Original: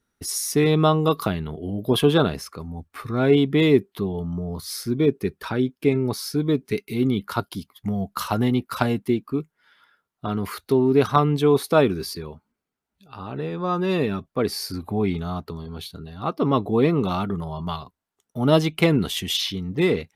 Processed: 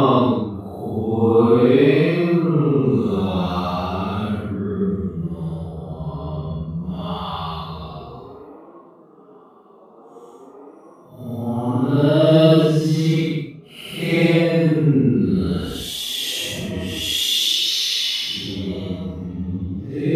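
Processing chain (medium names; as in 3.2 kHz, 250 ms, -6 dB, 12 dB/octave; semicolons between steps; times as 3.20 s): feedback echo behind a band-pass 352 ms, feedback 77%, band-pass 620 Hz, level -23 dB; rotary cabinet horn 6.7 Hz, later 0.75 Hz, at 15.16 s; Paulstretch 6.2×, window 0.10 s, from 16.54 s; trim +4.5 dB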